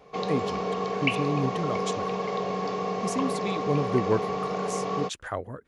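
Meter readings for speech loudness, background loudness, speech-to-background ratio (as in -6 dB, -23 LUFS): -31.0 LUFS, -29.5 LUFS, -1.5 dB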